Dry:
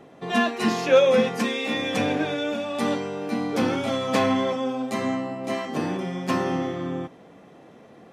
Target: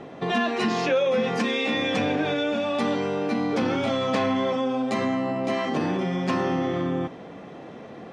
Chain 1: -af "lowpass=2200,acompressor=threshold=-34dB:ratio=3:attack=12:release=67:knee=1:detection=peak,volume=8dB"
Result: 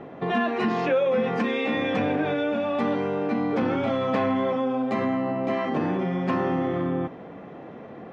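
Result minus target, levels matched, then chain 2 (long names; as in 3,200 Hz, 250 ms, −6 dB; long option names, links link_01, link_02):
4,000 Hz band −7.0 dB
-af "lowpass=5400,acompressor=threshold=-34dB:ratio=3:attack=12:release=67:knee=1:detection=peak,volume=8dB"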